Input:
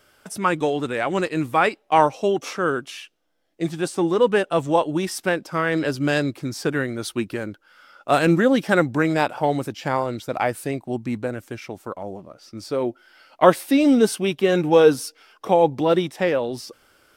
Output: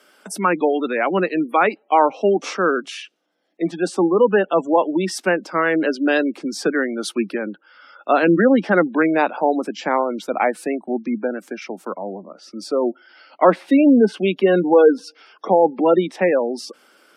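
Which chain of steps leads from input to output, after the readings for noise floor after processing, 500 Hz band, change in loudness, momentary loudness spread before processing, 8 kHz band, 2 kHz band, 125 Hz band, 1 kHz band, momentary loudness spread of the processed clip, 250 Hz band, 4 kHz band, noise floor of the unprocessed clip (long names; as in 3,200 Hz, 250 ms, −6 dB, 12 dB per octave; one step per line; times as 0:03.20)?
−58 dBFS, +3.0 dB, +2.5 dB, 17 LU, −1.0 dB, +2.5 dB, −4.5 dB, +2.5 dB, 16 LU, +3.5 dB, −1.5 dB, −62 dBFS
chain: Butterworth high-pass 180 Hz 72 dB per octave
gate on every frequency bin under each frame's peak −25 dB strong
treble cut that deepens with the level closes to 2,600 Hz, closed at −14.5 dBFS
in parallel at +2 dB: brickwall limiter −11 dBFS, peak gain reduction 10 dB
on the sum: level −3 dB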